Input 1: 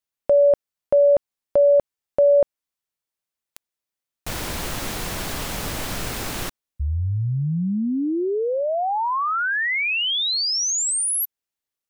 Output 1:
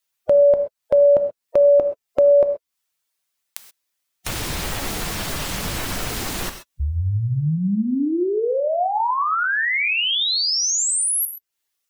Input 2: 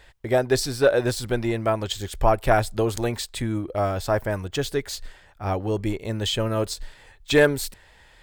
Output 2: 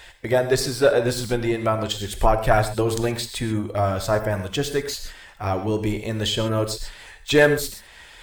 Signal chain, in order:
spectral magnitudes quantised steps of 15 dB
reverb whose tail is shaped and stops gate 150 ms flat, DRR 8 dB
one half of a high-frequency compander encoder only
level +1.5 dB

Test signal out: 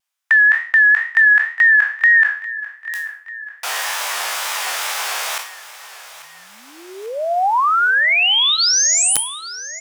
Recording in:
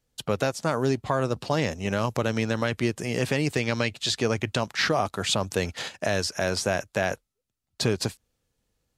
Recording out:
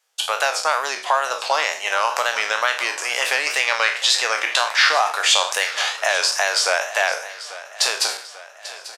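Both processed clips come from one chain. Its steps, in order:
peak hold with a decay on every bin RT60 0.42 s
high-pass filter 740 Hz 24 dB per octave
high-shelf EQ 11,000 Hz −5.5 dB
notch filter 4,200 Hz, Q 17
in parallel at −2.5 dB: downward compressor 16 to 1, threshold −29 dBFS
on the sum: wrap-around overflow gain 9 dB
coupled-rooms reverb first 0.36 s, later 1.7 s, from −27 dB, DRR 16.5 dB
tape wow and flutter 95 cents
on a send: repeating echo 841 ms, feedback 55%, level −16 dB
on the sum: level +6.5 dB

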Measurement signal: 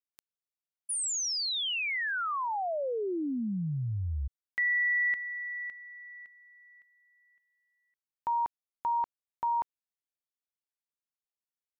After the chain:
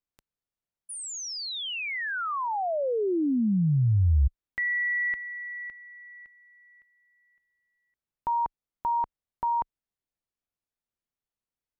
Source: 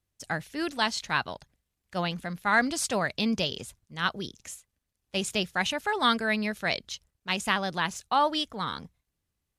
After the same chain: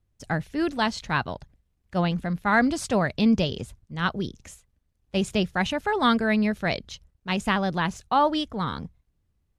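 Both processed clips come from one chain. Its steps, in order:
spectral tilt −2.5 dB per octave
level +2.5 dB

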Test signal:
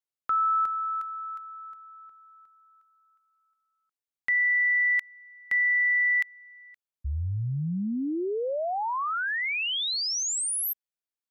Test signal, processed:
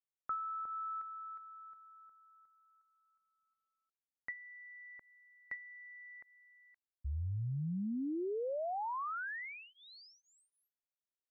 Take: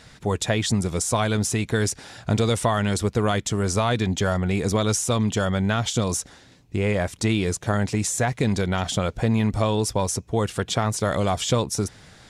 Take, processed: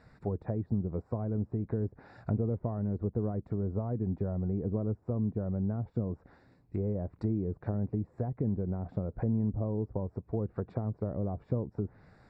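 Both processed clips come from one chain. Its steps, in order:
treble cut that deepens with the level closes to 440 Hz, closed at −19.5 dBFS
moving average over 14 samples
level −8 dB

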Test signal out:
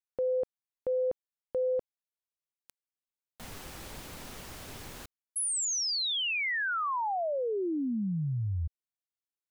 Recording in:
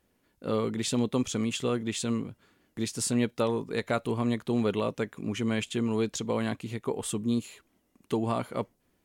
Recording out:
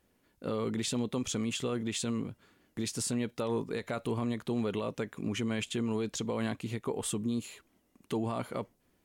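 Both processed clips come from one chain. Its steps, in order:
brickwall limiter −24 dBFS

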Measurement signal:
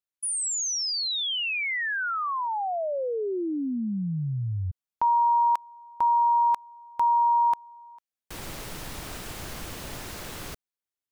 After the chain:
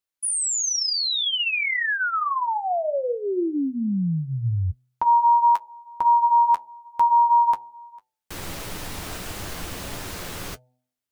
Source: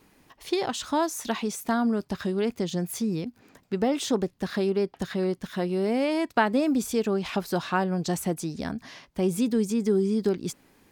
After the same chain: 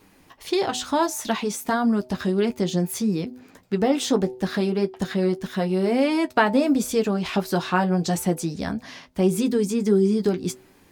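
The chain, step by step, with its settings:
hum removal 125.9 Hz, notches 7
flanger 1.6 Hz, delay 9.8 ms, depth 1.9 ms, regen −36%
level +8 dB

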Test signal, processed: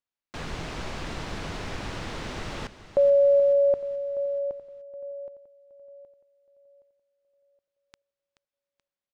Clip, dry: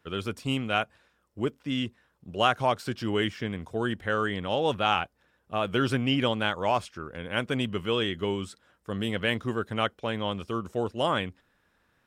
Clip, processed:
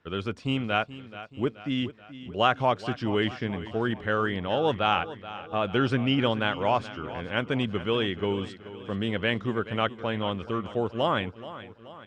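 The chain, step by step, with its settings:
high-frequency loss of the air 120 metres
on a send: repeating echo 429 ms, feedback 53%, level −15 dB
on the sum: level +1.5 dB

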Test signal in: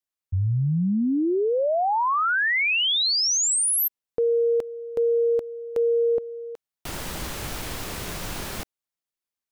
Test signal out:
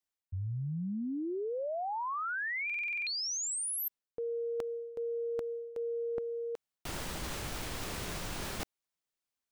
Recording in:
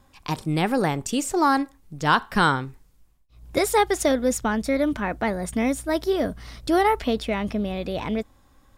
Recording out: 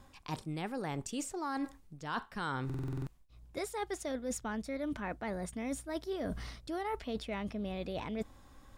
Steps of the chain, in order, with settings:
parametric band 13,000 Hz −5.5 dB 0.42 octaves
reversed playback
downward compressor 8 to 1, threshold −35 dBFS
reversed playback
buffer that repeats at 0:02.65, samples 2,048, times 8

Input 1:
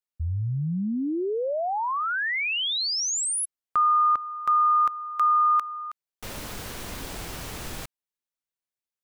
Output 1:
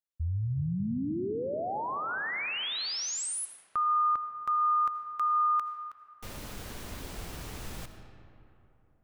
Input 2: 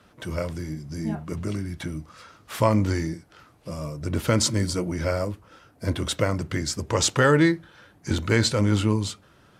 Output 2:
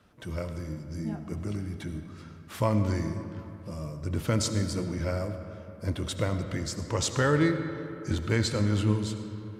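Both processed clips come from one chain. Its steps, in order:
low-shelf EQ 220 Hz +5 dB
comb and all-pass reverb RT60 3.1 s, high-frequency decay 0.5×, pre-delay 40 ms, DRR 8 dB
level −7.5 dB

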